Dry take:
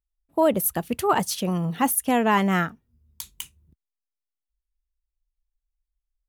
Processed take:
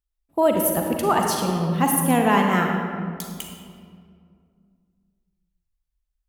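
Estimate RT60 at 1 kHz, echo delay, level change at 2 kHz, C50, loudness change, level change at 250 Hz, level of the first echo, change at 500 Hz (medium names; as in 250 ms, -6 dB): 2.0 s, no echo, +2.0 dB, 2.0 dB, +2.0 dB, +3.0 dB, no echo, +2.5 dB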